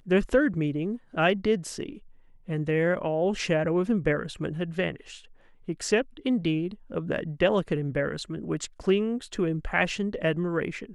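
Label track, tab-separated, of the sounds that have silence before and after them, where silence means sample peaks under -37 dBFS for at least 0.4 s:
2.480000	5.170000	sound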